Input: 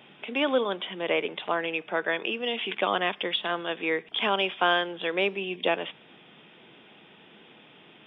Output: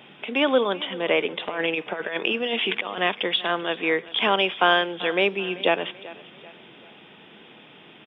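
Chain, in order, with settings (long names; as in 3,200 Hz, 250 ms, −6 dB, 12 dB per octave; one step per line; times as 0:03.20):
0:01.47–0:02.98: compressor whose output falls as the input rises −30 dBFS, ratio −0.5
repeating echo 387 ms, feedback 43%, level −19 dB
level +4.5 dB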